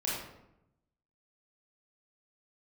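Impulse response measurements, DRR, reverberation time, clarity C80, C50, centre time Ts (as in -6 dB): -6.5 dB, 0.85 s, 3.5 dB, 0.0 dB, 66 ms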